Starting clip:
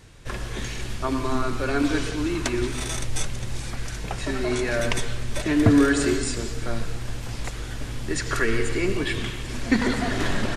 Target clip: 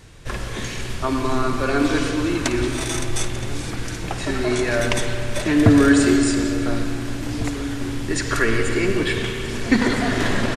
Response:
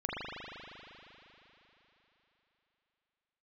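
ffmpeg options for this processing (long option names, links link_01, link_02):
-filter_complex "[0:a]asplit=2[link_01][link_02];[link_02]adelay=1749,volume=-15dB,highshelf=frequency=4000:gain=-39.4[link_03];[link_01][link_03]amix=inputs=2:normalize=0,asplit=2[link_04][link_05];[1:a]atrim=start_sample=2205,adelay=54[link_06];[link_05][link_06]afir=irnorm=-1:irlink=0,volume=-13.5dB[link_07];[link_04][link_07]amix=inputs=2:normalize=0,volume=3.5dB"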